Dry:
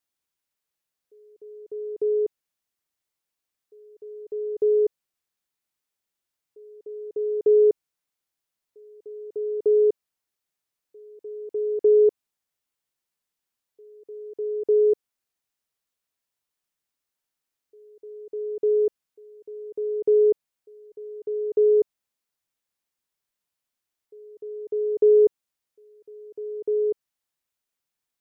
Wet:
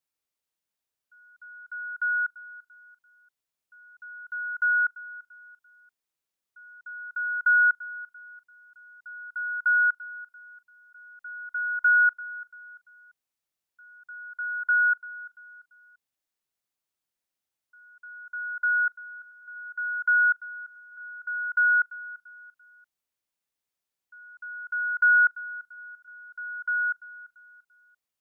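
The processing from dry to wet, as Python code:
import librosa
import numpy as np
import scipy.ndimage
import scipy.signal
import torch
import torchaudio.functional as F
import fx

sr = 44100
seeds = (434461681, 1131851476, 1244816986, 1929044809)

y = fx.band_swap(x, sr, width_hz=1000)
y = fx.echo_feedback(y, sr, ms=341, feedback_pct=37, wet_db=-18.0)
y = y * 10.0 ** (-3.0 / 20.0)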